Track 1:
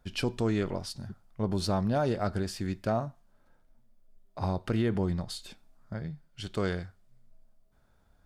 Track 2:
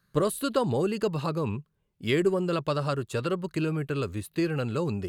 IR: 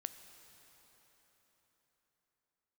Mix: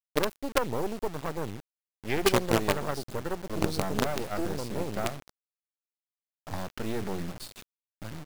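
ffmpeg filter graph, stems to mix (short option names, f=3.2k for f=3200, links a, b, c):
-filter_complex "[0:a]adelay=2100,volume=-2.5dB,asplit=2[a][b];[b]volume=-5.5dB[c];[1:a]afwtdn=0.0316,highpass=f=270:p=1,acontrast=24,volume=-4dB[d];[2:a]atrim=start_sample=2205[e];[c][e]afir=irnorm=-1:irlink=0[f];[a][d][f]amix=inputs=3:normalize=0,acrusher=bits=4:dc=4:mix=0:aa=0.000001"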